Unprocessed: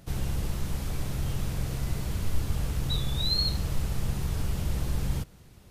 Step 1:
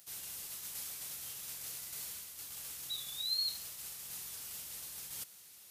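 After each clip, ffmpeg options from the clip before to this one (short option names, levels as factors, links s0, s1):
-af "areverse,acompressor=threshold=0.0224:ratio=6,areverse,aderivative,volume=2.66"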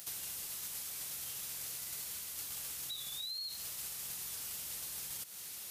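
-af "alimiter=level_in=3.35:limit=0.0631:level=0:latency=1:release=63,volume=0.299,acompressor=threshold=0.00282:ratio=6,volume=3.55"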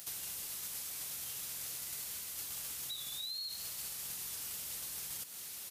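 -filter_complex "[0:a]asplit=7[s0][s1][s2][s3][s4][s5][s6];[s1]adelay=201,afreqshift=120,volume=0.2[s7];[s2]adelay=402,afreqshift=240,volume=0.114[s8];[s3]adelay=603,afreqshift=360,volume=0.0646[s9];[s4]adelay=804,afreqshift=480,volume=0.0372[s10];[s5]adelay=1005,afreqshift=600,volume=0.0211[s11];[s6]adelay=1206,afreqshift=720,volume=0.012[s12];[s0][s7][s8][s9][s10][s11][s12]amix=inputs=7:normalize=0"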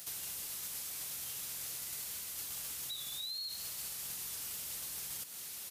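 -af "asoftclip=type=tanh:threshold=0.0251,volume=1.12"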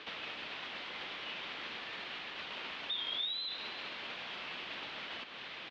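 -filter_complex "[0:a]asplit=2[s0][s1];[s1]adelay=314.9,volume=0.251,highshelf=f=4000:g=-7.08[s2];[s0][s2]amix=inputs=2:normalize=0,highpass=f=450:t=q:w=0.5412,highpass=f=450:t=q:w=1.307,lowpass=f=3600:t=q:w=0.5176,lowpass=f=3600:t=q:w=0.7071,lowpass=f=3600:t=q:w=1.932,afreqshift=-240,volume=3.55"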